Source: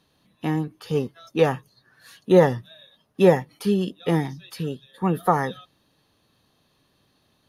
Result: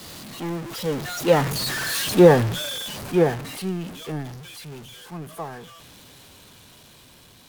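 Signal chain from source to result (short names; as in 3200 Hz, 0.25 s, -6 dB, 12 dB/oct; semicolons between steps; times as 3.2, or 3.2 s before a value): zero-crossing step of -20 dBFS; Doppler pass-by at 1.89, 31 m/s, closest 21 m; three-band expander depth 40%; gain -1 dB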